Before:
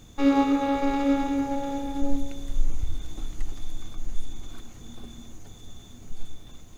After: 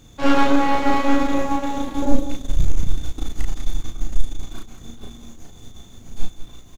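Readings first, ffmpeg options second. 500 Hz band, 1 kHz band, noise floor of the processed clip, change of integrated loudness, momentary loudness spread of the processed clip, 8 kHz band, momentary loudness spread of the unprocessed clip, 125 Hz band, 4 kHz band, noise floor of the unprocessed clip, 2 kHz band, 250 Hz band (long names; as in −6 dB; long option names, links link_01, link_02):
+5.5 dB, +7.5 dB, −44 dBFS, +4.0 dB, 22 LU, can't be measured, 22 LU, +8.5 dB, +8.0 dB, −46 dBFS, +10.5 dB, +3.0 dB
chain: -af "aeval=exprs='0.355*(cos(1*acos(clip(val(0)/0.355,-1,1)))-cos(1*PI/2))+0.141*(cos(6*acos(clip(val(0)/0.355,-1,1)))-cos(6*PI/2))':channel_layout=same,aecho=1:1:34.99|195.3:0.794|0.282"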